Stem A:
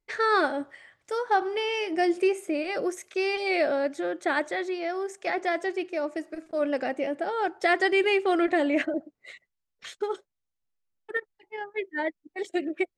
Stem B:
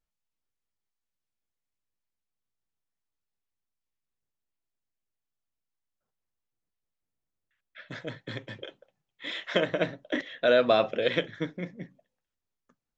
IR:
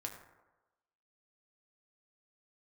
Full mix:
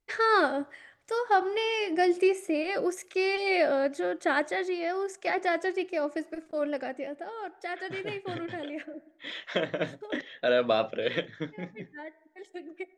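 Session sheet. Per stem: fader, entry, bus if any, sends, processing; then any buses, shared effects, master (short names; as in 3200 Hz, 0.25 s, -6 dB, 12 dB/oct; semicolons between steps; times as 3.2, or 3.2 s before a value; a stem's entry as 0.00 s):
-0.5 dB, 0.00 s, send -23 dB, auto duck -15 dB, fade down 1.45 s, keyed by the second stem
-3.0 dB, 0.00 s, no send, dry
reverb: on, RT60 1.1 s, pre-delay 5 ms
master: wow and flutter 31 cents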